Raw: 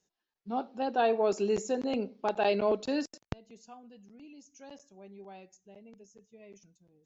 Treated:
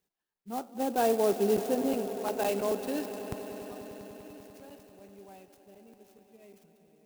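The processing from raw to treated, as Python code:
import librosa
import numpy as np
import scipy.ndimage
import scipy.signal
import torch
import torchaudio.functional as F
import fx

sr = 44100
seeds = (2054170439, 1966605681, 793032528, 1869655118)

y = fx.peak_eq(x, sr, hz=250.0, db=7.0, octaves=2.3, at=(0.69, 1.93))
y = fx.echo_swell(y, sr, ms=98, loudest=5, wet_db=-17)
y = fx.clock_jitter(y, sr, seeds[0], jitter_ms=0.047)
y = y * librosa.db_to_amplitude(-3.0)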